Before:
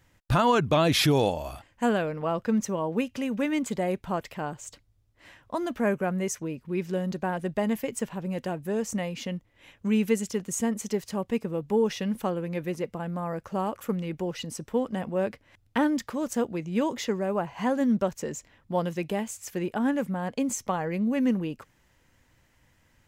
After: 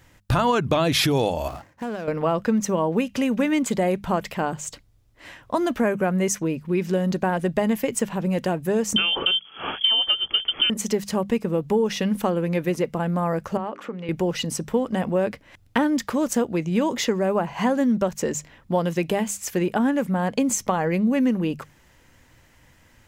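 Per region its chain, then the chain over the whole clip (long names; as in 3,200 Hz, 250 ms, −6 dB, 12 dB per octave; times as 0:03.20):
0:01.48–0:02.08: running median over 15 samples + high-pass filter 87 Hz + downward compressor, threshold −37 dBFS
0:08.96–0:10.70: voice inversion scrambler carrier 3,300 Hz + multiband upward and downward compressor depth 100%
0:13.57–0:14.09: mains-hum notches 50/100/150/200/250/300/350/400 Hz + downward compressor, threshold −34 dBFS + band-pass filter 240–3,300 Hz
whole clip: downward compressor 4 to 1, threshold −27 dBFS; mains-hum notches 50/100/150/200 Hz; level +9 dB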